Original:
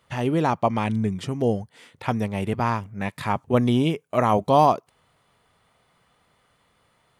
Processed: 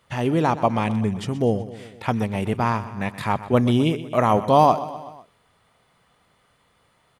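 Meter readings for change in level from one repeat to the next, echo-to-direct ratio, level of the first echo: -4.5 dB, -13.0 dB, -15.0 dB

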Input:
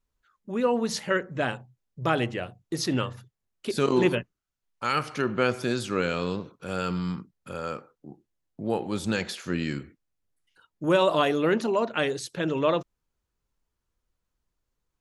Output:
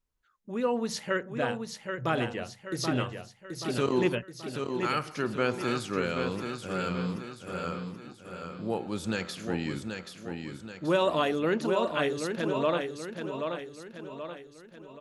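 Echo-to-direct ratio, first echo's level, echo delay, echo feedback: -5.0 dB, -6.0 dB, 0.78 s, 48%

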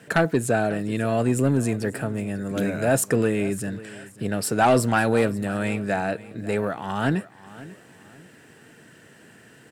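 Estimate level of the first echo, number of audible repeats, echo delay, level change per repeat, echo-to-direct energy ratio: -18.5 dB, 2, 0.543 s, -9.5 dB, -18.0 dB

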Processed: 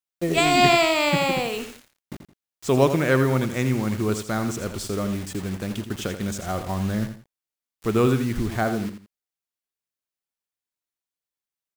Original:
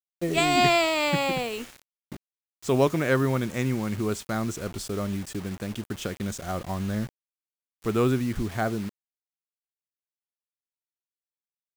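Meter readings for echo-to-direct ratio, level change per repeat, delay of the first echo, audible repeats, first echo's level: -9.0 dB, -11.0 dB, 84 ms, 2, -9.5 dB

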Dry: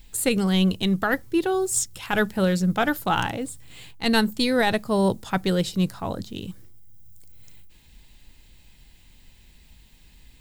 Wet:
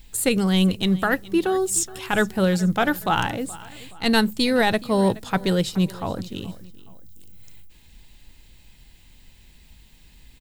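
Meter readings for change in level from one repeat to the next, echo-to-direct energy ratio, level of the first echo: -7.5 dB, -19.0 dB, -19.5 dB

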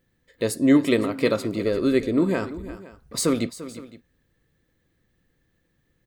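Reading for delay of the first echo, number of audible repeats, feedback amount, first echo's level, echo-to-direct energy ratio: 0.344 s, 2, no steady repeat, -15.0 dB, -14.0 dB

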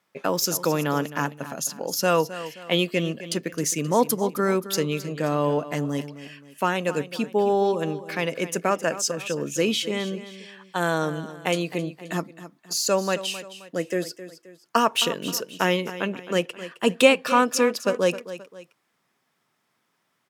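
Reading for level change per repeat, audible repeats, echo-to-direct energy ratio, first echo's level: -8.0 dB, 2, -13.5 dB, -14.0 dB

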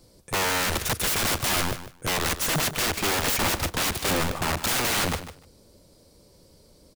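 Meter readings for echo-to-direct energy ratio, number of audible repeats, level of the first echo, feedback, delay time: -12.5 dB, 2, -12.5 dB, 16%, 0.15 s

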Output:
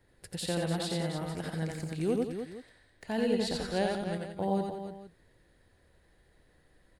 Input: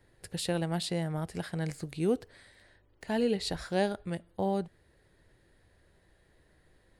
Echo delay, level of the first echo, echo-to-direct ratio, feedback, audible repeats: 87 ms, -2.5 dB, -1.0 dB, no steady repeat, 4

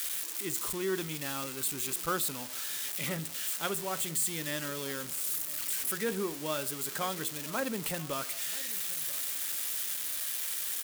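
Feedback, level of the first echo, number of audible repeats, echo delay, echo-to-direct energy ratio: 19%, -19.5 dB, 2, 0.984 s, -19.5 dB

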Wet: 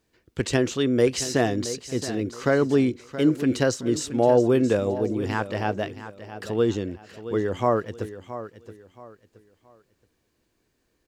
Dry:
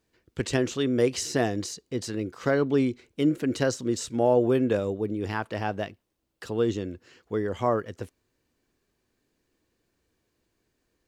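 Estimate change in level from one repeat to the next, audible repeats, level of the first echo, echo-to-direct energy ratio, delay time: -10.5 dB, 3, -13.0 dB, -12.5 dB, 0.673 s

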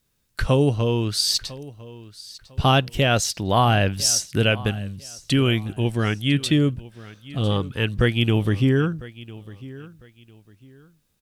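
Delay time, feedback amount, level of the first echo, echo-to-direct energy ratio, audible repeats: 1.001 s, 27%, -19.0 dB, -18.5 dB, 2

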